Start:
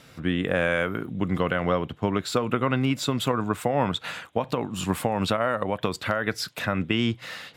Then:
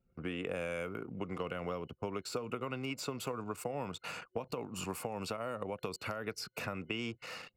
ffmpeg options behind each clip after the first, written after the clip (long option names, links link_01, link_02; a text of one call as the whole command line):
ffmpeg -i in.wav -filter_complex "[0:a]anlmdn=0.398,superequalizer=7b=1.58:11b=0.447:13b=0.316,acrossover=split=380|3300[link_01][link_02][link_03];[link_01]acompressor=threshold=-39dB:ratio=4[link_04];[link_02]acompressor=threshold=-35dB:ratio=4[link_05];[link_03]acompressor=threshold=-39dB:ratio=4[link_06];[link_04][link_05][link_06]amix=inputs=3:normalize=0,volume=-4.5dB" out.wav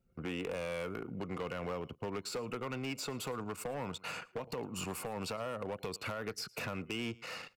ffmpeg -i in.wav -af "aecho=1:1:111:0.0668,volume=34.5dB,asoftclip=hard,volume=-34.5dB,volume=1.5dB" out.wav